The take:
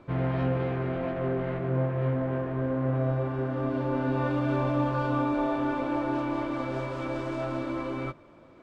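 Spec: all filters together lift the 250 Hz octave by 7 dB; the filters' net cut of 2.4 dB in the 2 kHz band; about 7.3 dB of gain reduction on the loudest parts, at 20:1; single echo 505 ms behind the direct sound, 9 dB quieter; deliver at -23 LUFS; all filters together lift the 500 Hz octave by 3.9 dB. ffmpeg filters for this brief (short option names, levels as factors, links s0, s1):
-af "equalizer=f=250:t=o:g=7.5,equalizer=f=500:t=o:g=3,equalizer=f=2000:t=o:g=-4,acompressor=threshold=0.0562:ratio=20,aecho=1:1:505:0.355,volume=2"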